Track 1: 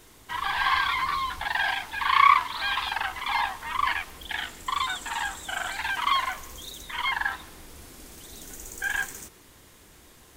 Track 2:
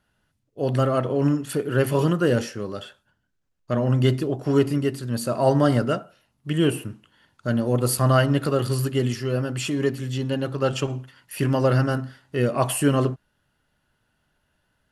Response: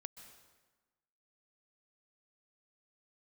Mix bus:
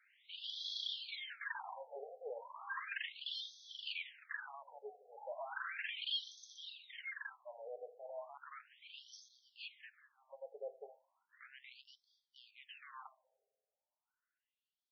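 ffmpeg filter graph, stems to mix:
-filter_complex "[0:a]equalizer=f=740:t=o:w=1.9:g=-11.5,volume=-5.5dB,afade=t=out:st=6.47:d=0.39:silence=0.421697[a];[1:a]alimiter=limit=-13dB:level=0:latency=1:release=20,aeval=exprs='0.133*(abs(mod(val(0)/0.133+3,4)-2)-1)':c=same,volume=-18dB,asplit=2[b][c];[c]volume=-13.5dB[d];[2:a]atrim=start_sample=2205[e];[d][e]afir=irnorm=-1:irlink=0[f];[a][b][f]amix=inputs=3:normalize=0,afftfilt=real='re*between(b*sr/1024,560*pow(4600/560,0.5+0.5*sin(2*PI*0.35*pts/sr))/1.41,560*pow(4600/560,0.5+0.5*sin(2*PI*0.35*pts/sr))*1.41)':imag='im*between(b*sr/1024,560*pow(4600/560,0.5+0.5*sin(2*PI*0.35*pts/sr))/1.41,560*pow(4600/560,0.5+0.5*sin(2*PI*0.35*pts/sr))*1.41)':win_size=1024:overlap=0.75"

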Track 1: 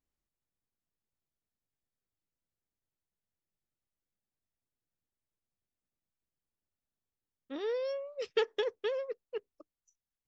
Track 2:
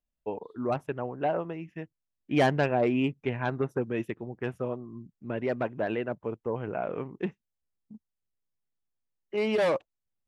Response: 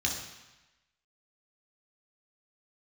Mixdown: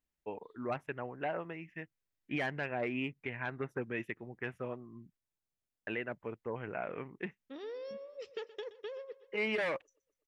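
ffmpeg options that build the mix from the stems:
-filter_complex "[0:a]acompressor=threshold=-44dB:ratio=2,volume=-2.5dB,asplit=2[a][b];[b]volume=-17dB[c];[1:a]equalizer=f=2k:t=o:w=1.1:g=12.5,volume=-8.5dB,asplit=3[d][e][f];[d]atrim=end=5.17,asetpts=PTS-STARTPTS,afade=t=out:st=5.166:d=0.004:c=hsin[g];[e]atrim=start=5.17:end=5.87,asetpts=PTS-STARTPTS,volume=0[h];[f]atrim=start=5.87,asetpts=PTS-STARTPTS,afade=t=in:d=0.004:c=hsin[i];[g][h][i]concat=n=3:v=0:a=1[j];[c]aecho=0:1:123|246|369|492|615|738|861|984|1107:1|0.58|0.336|0.195|0.113|0.0656|0.0381|0.0221|0.0128[k];[a][j][k]amix=inputs=3:normalize=0,alimiter=level_in=0.5dB:limit=-24dB:level=0:latency=1:release=237,volume=-0.5dB"

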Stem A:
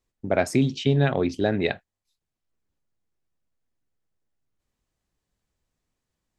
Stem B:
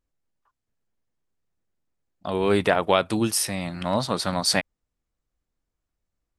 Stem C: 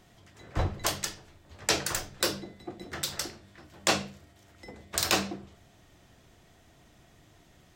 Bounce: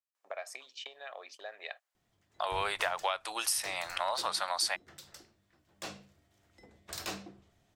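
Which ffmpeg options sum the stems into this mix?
-filter_complex "[0:a]agate=range=-18dB:threshold=-31dB:ratio=16:detection=peak,aecho=1:1:1.7:0.4,acompressor=threshold=-30dB:ratio=6,volume=-3dB[a];[1:a]adelay=150,volume=3dB[b];[2:a]asoftclip=type=hard:threshold=-19dB,adelay=1950,volume=-12dB,afade=t=in:st=5.63:d=0.75:silence=0.473151[c];[a][b]amix=inputs=2:normalize=0,highpass=f=700:w=0.5412,highpass=f=700:w=1.3066,acompressor=threshold=-29dB:ratio=6,volume=0dB[d];[c][d]amix=inputs=2:normalize=0"

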